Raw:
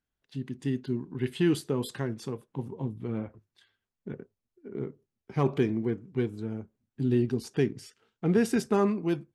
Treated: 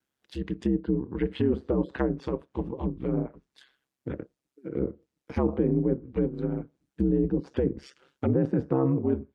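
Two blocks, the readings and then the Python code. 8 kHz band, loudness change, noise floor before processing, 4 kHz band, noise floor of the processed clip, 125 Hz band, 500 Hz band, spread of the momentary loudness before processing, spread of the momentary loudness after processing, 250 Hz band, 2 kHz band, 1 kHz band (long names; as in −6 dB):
below −15 dB, +1.5 dB, below −85 dBFS, can't be measured, below −85 dBFS, +1.5 dB, +2.0 dB, 16 LU, 13 LU, +2.0 dB, −4.5 dB, −1.5 dB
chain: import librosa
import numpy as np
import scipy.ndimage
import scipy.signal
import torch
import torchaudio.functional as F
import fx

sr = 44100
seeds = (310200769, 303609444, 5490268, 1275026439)

p1 = scipy.signal.sosfilt(scipy.signal.butter(4, 140.0, 'highpass', fs=sr, output='sos'), x)
p2 = p1 * np.sin(2.0 * np.pi * 67.0 * np.arange(len(p1)) / sr)
p3 = fx.over_compress(p2, sr, threshold_db=-32.0, ratio=-1.0)
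p4 = p2 + F.gain(torch.from_numpy(p3), 3.0).numpy()
p5 = fx.vibrato(p4, sr, rate_hz=0.41, depth_cents=8.4)
y = fx.env_lowpass_down(p5, sr, base_hz=790.0, full_db=-22.5)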